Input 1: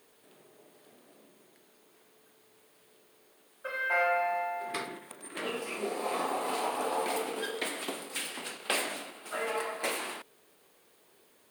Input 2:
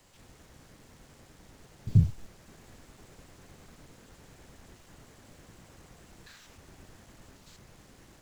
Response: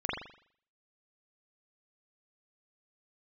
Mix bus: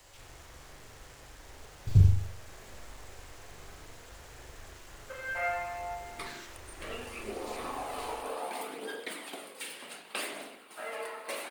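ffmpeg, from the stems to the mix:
-filter_complex "[0:a]aphaser=in_gain=1:out_gain=1:delay=2.3:decay=0.33:speed=0.67:type=triangular,adelay=1450,volume=-8.5dB,asplit=2[a][b];[b]volume=-12dB[c];[1:a]equalizer=f=200:w=1:g=-15,volume=2.5dB,asplit=2[d][e];[e]volume=-6.5dB[f];[2:a]atrim=start_sample=2205[g];[c][f]amix=inputs=2:normalize=0[h];[h][g]afir=irnorm=-1:irlink=0[i];[a][d][i]amix=inputs=3:normalize=0"

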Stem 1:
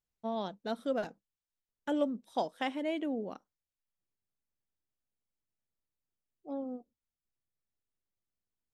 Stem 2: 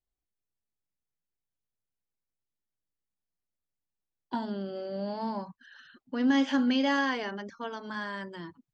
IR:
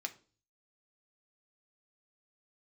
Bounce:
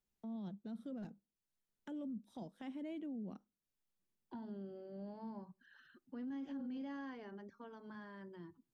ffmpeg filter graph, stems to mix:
-filter_complex "[0:a]equalizer=f=210:t=o:w=0.56:g=11,volume=-1.5dB,asplit=2[a][b];[b]volume=-23.5dB[c];[1:a]highshelf=f=2.4k:g=-11.5,volume=-8dB,asplit=2[d][e];[e]volume=-14dB[f];[2:a]atrim=start_sample=2205[g];[c][f]amix=inputs=2:normalize=0[h];[h][g]afir=irnorm=-1:irlink=0[i];[a][d][i]amix=inputs=3:normalize=0,equalizer=f=370:w=4.1:g=5,acrossover=split=200[j][k];[k]acompressor=threshold=-59dB:ratio=2[l];[j][l]amix=inputs=2:normalize=0,alimiter=level_in=15dB:limit=-24dB:level=0:latency=1:release=11,volume=-15dB"

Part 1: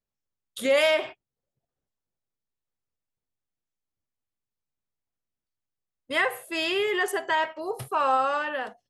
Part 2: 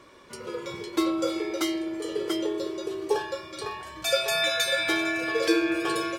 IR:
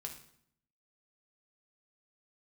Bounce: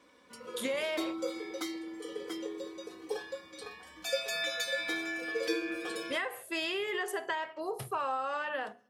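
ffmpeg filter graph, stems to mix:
-filter_complex "[0:a]bandreject=f=60:t=h:w=6,bandreject=f=120:t=h:w=6,bandreject=f=180:t=h:w=6,bandreject=f=240:t=h:w=6,bandreject=f=300:t=h:w=6,bandreject=f=360:t=h:w=6,bandreject=f=420:t=h:w=6,acompressor=threshold=-28dB:ratio=10,volume=-4dB,asplit=2[a][b];[b]volume=-9.5dB[c];[1:a]aecho=1:1:4:0.96,volume=-11.5dB[d];[2:a]atrim=start_sample=2205[e];[c][e]afir=irnorm=-1:irlink=0[f];[a][d][f]amix=inputs=3:normalize=0,highpass=81"

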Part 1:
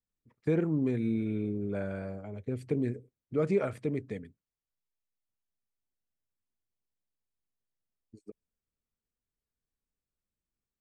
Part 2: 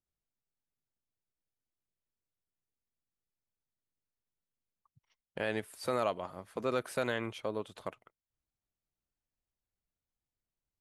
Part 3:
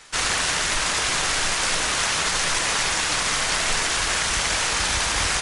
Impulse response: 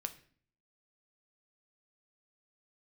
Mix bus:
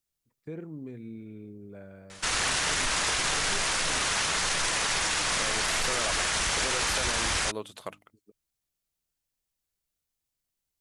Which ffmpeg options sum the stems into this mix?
-filter_complex "[0:a]volume=-11.5dB[a];[1:a]highshelf=f=2.6k:g=10.5,bandreject=f=50:t=h:w=6,bandreject=f=100:t=h:w=6,bandreject=f=150:t=h:w=6,bandreject=f=200:t=h:w=6,bandreject=f=250:t=h:w=6,bandreject=f=300:t=h:w=6,volume=1dB[b];[2:a]adelay=2100,volume=-0.5dB[c];[a][b][c]amix=inputs=3:normalize=0,alimiter=limit=-18.5dB:level=0:latency=1:release=11"

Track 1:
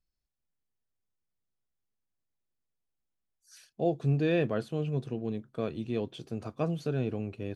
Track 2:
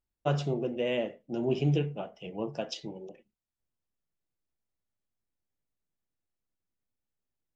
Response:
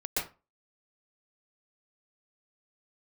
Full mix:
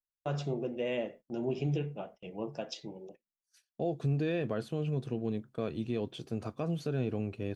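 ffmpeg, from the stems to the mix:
-filter_complex "[0:a]volume=0.5dB[a];[1:a]bandreject=f=3k:w=15,volume=-3.5dB[b];[a][b]amix=inputs=2:normalize=0,agate=range=-25dB:threshold=-51dB:ratio=16:detection=peak,alimiter=limit=-23.5dB:level=0:latency=1:release=91"

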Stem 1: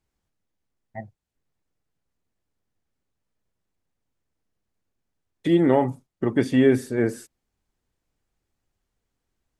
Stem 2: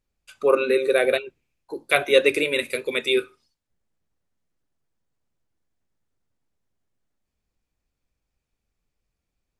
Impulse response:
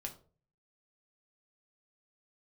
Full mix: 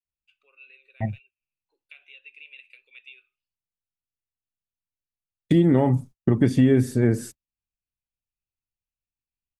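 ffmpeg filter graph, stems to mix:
-filter_complex "[0:a]bass=f=250:g=13,treble=f=4k:g=4,agate=range=-32dB:threshold=-37dB:ratio=16:detection=peak,adelay=50,volume=2dB[a];[1:a]alimiter=limit=-10dB:level=0:latency=1:release=158,acompressor=threshold=-25dB:ratio=3,bandpass=f=2.7k:t=q:w=8.1:csg=0,volume=-9.5dB[b];[a][b]amix=inputs=2:normalize=0,acompressor=threshold=-16dB:ratio=3"

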